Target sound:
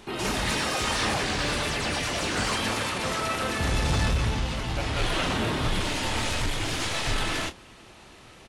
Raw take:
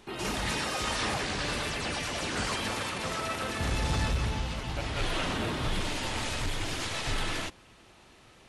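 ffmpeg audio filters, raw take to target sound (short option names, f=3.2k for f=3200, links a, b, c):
-filter_complex "[0:a]asplit=2[a][b];[b]asoftclip=type=tanh:threshold=-39dB,volume=-6dB[c];[a][c]amix=inputs=2:normalize=0,asplit=2[d][e];[e]adelay=27,volume=-10.5dB[f];[d][f]amix=inputs=2:normalize=0,volume=3dB"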